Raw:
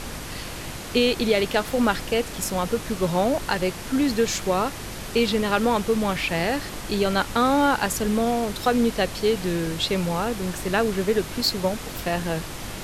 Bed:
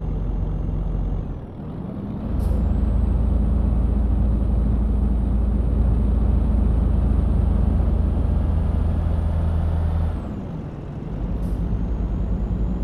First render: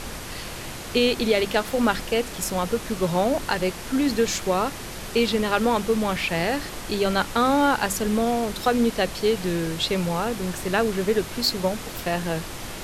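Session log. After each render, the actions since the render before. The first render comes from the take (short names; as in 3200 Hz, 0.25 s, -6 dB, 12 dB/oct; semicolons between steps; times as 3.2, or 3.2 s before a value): de-hum 50 Hz, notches 6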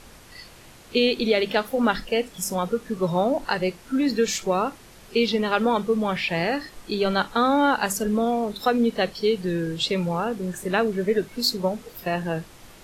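noise print and reduce 13 dB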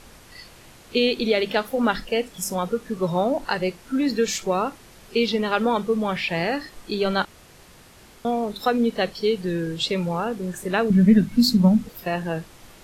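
7.25–8.25 room tone; 10.9–11.89 resonant low shelf 300 Hz +9.5 dB, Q 3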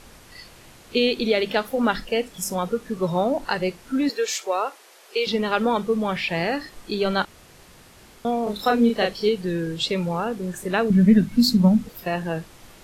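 4.09–5.27 HPF 430 Hz 24 dB/oct; 8.43–9.29 doubler 34 ms -3 dB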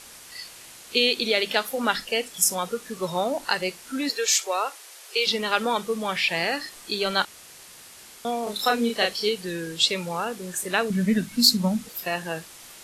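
Chebyshev low-pass 11000 Hz, order 2; tilt +3 dB/oct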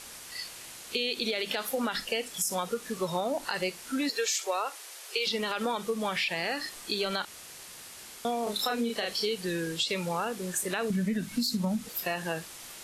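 limiter -15.5 dBFS, peak gain reduction 10.5 dB; compressor, threshold -26 dBFS, peak gain reduction 6.5 dB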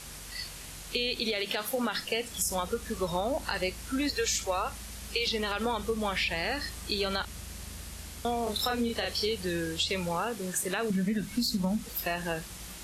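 add bed -25.5 dB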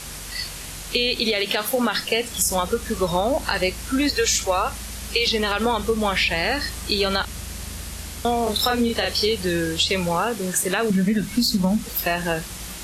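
gain +9 dB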